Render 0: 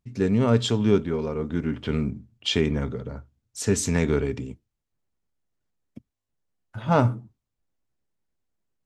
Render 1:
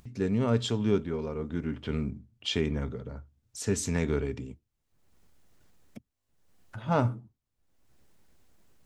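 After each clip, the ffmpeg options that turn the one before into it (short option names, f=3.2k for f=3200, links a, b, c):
-af "acompressor=mode=upward:threshold=-34dB:ratio=2.5,equalizer=f=73:w=4.4:g=3,volume=-6dB"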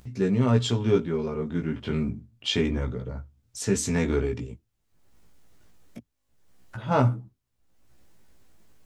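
-af "flanger=delay=15.5:depth=2.8:speed=0.29,volume=7dB"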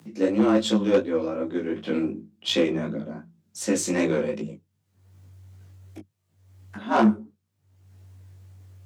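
-af "flanger=delay=16.5:depth=6:speed=2.7,aeval=exprs='0.237*(cos(1*acos(clip(val(0)/0.237,-1,1)))-cos(1*PI/2))+0.0299*(cos(5*acos(clip(val(0)/0.237,-1,1)))-cos(5*PI/2))+0.00944*(cos(6*acos(clip(val(0)/0.237,-1,1)))-cos(6*PI/2))+0.0211*(cos(7*acos(clip(val(0)/0.237,-1,1)))-cos(7*PI/2))+0.0106*(cos(8*acos(clip(val(0)/0.237,-1,1)))-cos(8*PI/2))':c=same,afreqshift=94,volume=3.5dB"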